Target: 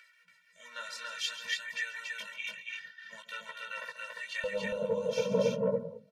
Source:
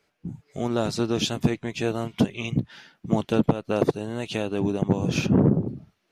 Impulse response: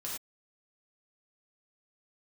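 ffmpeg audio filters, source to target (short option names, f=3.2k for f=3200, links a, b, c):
-af "acompressor=mode=upward:threshold=-42dB:ratio=2.5,flanger=delay=15.5:depth=6.3:speed=0.57,asetnsamples=n=441:p=0,asendcmd='4.44 highpass f 420',highpass=f=1.8k:t=q:w=4.9,aphaser=in_gain=1:out_gain=1:delay=2.6:decay=0.31:speed=1.3:type=sinusoidal,aecho=1:1:137|282.8:0.251|0.794,afftfilt=real='re*eq(mod(floor(b*sr/1024/220),2),0)':imag='im*eq(mod(floor(b*sr/1024/220),2),0)':win_size=1024:overlap=0.75,volume=-4dB"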